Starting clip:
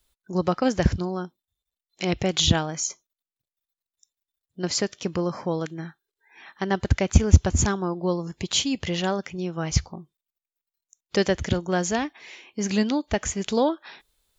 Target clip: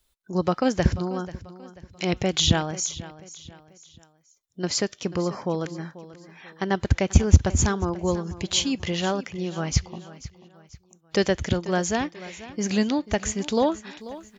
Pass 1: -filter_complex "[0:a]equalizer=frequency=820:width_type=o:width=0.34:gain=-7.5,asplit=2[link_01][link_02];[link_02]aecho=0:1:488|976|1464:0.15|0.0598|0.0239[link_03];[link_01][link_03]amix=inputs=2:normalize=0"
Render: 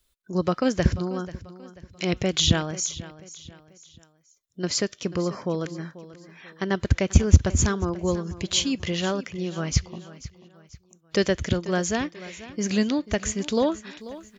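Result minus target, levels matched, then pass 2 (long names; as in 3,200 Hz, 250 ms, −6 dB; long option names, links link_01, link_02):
1,000 Hz band −3.5 dB
-filter_complex "[0:a]asplit=2[link_01][link_02];[link_02]aecho=0:1:488|976|1464:0.15|0.0598|0.0239[link_03];[link_01][link_03]amix=inputs=2:normalize=0"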